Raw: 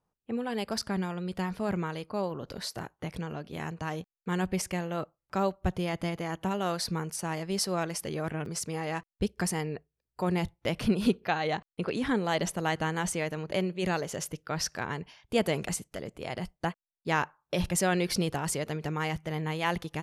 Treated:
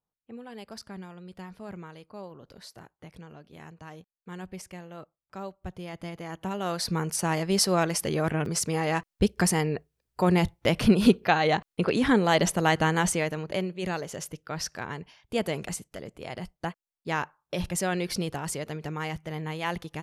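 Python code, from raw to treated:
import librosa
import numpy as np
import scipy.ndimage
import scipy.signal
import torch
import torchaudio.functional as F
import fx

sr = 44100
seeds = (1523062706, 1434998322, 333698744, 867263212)

y = fx.gain(x, sr, db=fx.line((5.59, -10.0), (6.63, -0.5), (7.15, 6.5), (13.0, 6.5), (13.72, -1.5)))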